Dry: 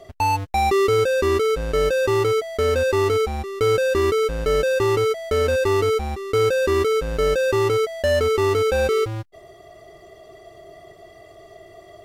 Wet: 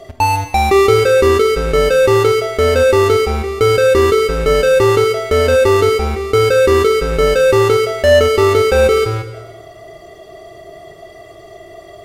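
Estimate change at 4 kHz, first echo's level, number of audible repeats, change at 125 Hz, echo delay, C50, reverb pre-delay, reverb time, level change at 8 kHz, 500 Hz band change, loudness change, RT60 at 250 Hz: +8.5 dB, no echo, no echo, +7.5 dB, no echo, 8.0 dB, 26 ms, 1.1 s, +8.0 dB, +8.0 dB, +8.0 dB, 1.1 s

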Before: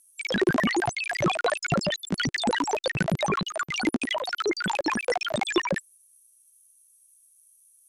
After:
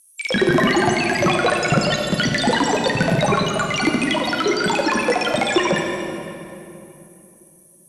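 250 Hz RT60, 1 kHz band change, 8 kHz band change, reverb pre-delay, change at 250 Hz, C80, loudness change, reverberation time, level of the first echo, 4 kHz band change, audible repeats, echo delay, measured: 3.5 s, +8.0 dB, +7.0 dB, 21 ms, +8.5 dB, 3.5 dB, +7.5 dB, 2.9 s, no echo, +7.5 dB, no echo, no echo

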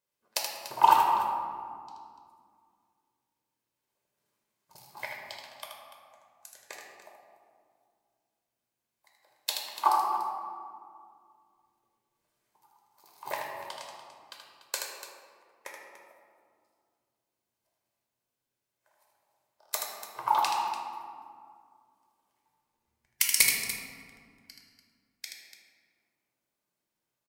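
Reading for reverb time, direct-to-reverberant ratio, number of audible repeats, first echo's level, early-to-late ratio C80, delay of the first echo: 2.2 s, -2.0 dB, 2, -5.5 dB, 2.5 dB, 78 ms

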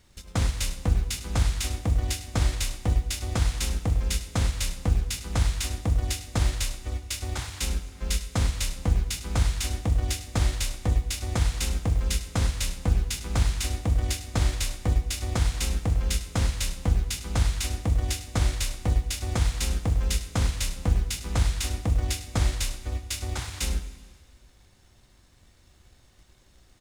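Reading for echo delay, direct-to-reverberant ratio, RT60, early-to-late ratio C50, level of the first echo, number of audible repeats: 102 ms, 10.0 dB, 1.9 s, 11.5 dB, -15.0 dB, 1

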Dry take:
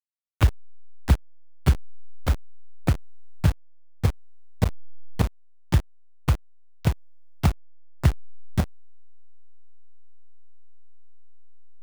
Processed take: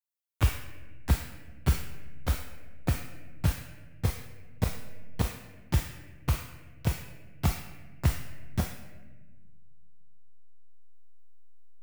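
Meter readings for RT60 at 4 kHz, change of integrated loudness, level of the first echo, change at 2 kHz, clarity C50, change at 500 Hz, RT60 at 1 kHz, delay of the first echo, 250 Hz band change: 0.75 s, -6.0 dB, no echo, -3.0 dB, 4.0 dB, -5.5 dB, 1.1 s, no echo, -5.5 dB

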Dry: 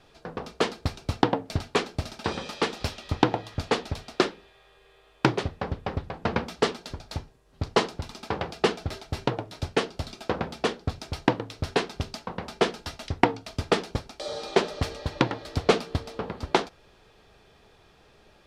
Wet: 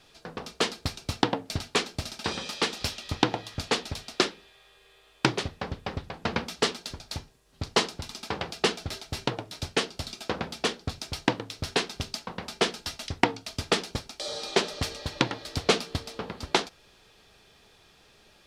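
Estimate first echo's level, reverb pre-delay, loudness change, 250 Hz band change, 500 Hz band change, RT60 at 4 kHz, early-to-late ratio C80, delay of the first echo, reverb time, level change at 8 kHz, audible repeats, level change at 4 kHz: no echo, no reverb, -1.0 dB, -3.0 dB, -4.0 dB, no reverb, no reverb, no echo, no reverb, +6.0 dB, no echo, +4.0 dB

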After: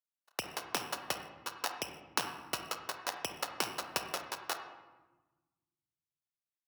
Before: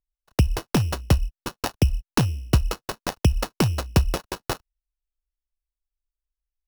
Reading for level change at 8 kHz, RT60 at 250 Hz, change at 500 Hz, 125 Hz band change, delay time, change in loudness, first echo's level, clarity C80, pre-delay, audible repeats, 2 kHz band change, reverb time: -6.0 dB, 1.8 s, -13.0 dB, -35.0 dB, no echo, -13.0 dB, no echo, 9.0 dB, 31 ms, no echo, -5.5 dB, 1.2 s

